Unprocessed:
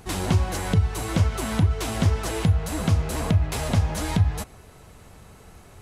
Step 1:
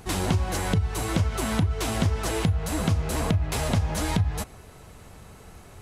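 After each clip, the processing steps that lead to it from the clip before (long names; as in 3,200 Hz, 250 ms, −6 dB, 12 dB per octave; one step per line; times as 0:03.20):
downward compressor, threshold −20 dBFS, peak gain reduction 6.5 dB
level +1 dB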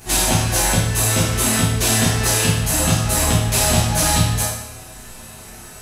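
high-shelf EQ 3,900 Hz +12 dB
convolution reverb RT60 0.85 s, pre-delay 8 ms, DRR −10 dB
level −2 dB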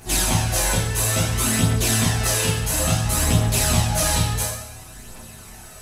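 phase shifter 0.58 Hz, delay 2.4 ms, feedback 36%
level −4 dB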